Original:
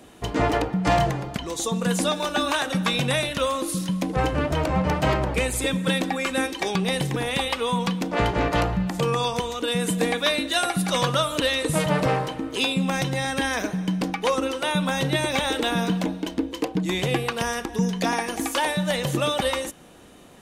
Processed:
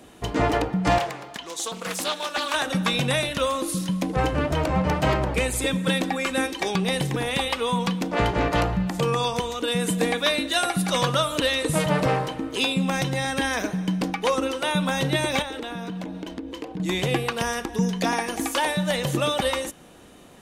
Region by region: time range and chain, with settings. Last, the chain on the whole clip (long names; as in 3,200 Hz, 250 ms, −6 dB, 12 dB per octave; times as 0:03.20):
0:00.98–0:02.54: high-pass filter 890 Hz 6 dB per octave + highs frequency-modulated by the lows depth 0.4 ms
0:15.42–0:16.80: high-shelf EQ 4,500 Hz −6.5 dB + downward compressor, threshold −29 dBFS
whole clip: no processing